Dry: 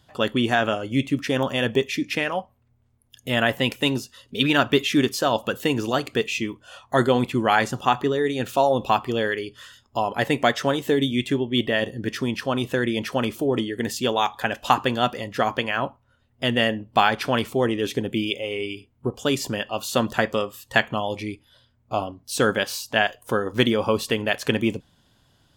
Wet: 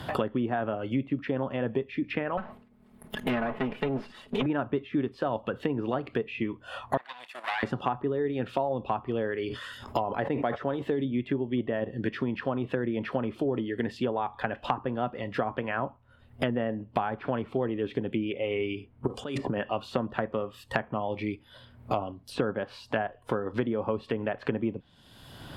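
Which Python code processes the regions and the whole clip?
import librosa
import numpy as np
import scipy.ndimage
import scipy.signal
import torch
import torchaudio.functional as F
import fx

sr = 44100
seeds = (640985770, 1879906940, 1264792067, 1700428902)

y = fx.chain(x, sr, fx.lower_of_two(delay_ms=4.7),
    fx.sustainer(db_per_s=140.0), at=(2.37, 4.46))
y = fx.chain(y, sr, fx.lower_of_two(delay_ms=1.1),
    fx.bessel_highpass(hz=1900.0, order=2),
    fx.level_steps(step_db=11), at=(6.97, 7.63))
y = fx.chain(y, sr, fx.bass_treble(bass_db=-3, treble_db=8),
    fx.sustainer(db_per_s=64.0), at=(9.36, 11.05))
y = fx.chain(y, sr, fx.over_compress(threshold_db=-31.0, ratio=-1.0),
    fx.peak_eq(hz=8700.0, db=13.0, octaves=1.4), at=(19.07, 19.6))
y = fx.env_lowpass_down(y, sr, base_hz=1100.0, full_db=-19.0)
y = fx.peak_eq(y, sr, hz=6400.0, db=-11.5, octaves=0.68)
y = fx.band_squash(y, sr, depth_pct=100)
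y = y * 10.0 ** (-6.5 / 20.0)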